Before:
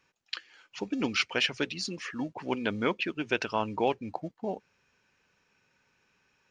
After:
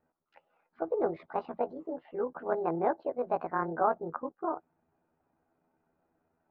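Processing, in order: rotating-head pitch shifter +8.5 st; low-pass 1.2 kHz 24 dB/octave; trim +2.5 dB

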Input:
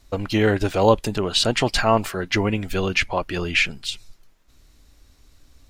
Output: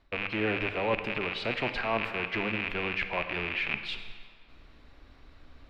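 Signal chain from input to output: rattle on loud lows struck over -37 dBFS, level -8 dBFS; bass shelf 340 Hz -8.5 dB; hum notches 50/100 Hz; reverse; compression 6:1, threshold -33 dBFS, peak gain reduction 19 dB; reverse; distance through air 390 m; on a send: reverberation RT60 1.8 s, pre-delay 25 ms, DRR 8 dB; on the sum: trim +8 dB

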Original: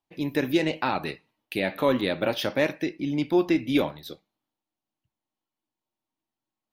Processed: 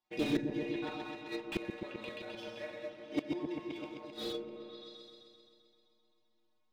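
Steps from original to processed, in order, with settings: low-pass 6.1 kHz 24 dB/octave; bass shelf 160 Hz -10.5 dB; inharmonic resonator 110 Hz, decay 0.36 s, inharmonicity 0.008; gated-style reverb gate 250 ms flat, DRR -1 dB; inverted gate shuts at -34 dBFS, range -28 dB; waveshaping leveller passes 1; delay with an opening low-pass 130 ms, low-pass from 400 Hz, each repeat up 1 oct, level -3 dB; slew-rate limiter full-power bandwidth 6.4 Hz; trim +13.5 dB

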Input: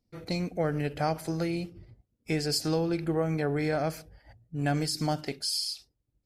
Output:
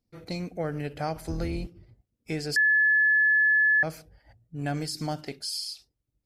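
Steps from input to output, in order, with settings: 1.15–1.67 s: octave divider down 2 oct, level +2 dB; 2.56–3.83 s: bleep 1.72 kHz -15.5 dBFS; trim -2.5 dB

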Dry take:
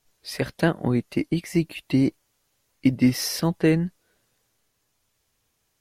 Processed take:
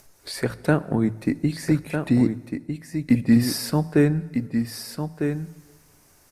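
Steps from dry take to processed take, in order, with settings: hum notches 60/120/180 Hz; gate with hold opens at -44 dBFS; peaking EQ 3.6 kHz -10 dB 0.88 oct; upward compressor, threshold -30 dBFS; delay 1150 ms -7 dB; plate-style reverb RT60 1.3 s, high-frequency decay 0.85×, DRR 17.5 dB; speed mistake 48 kHz file played as 44.1 kHz; trim +1.5 dB

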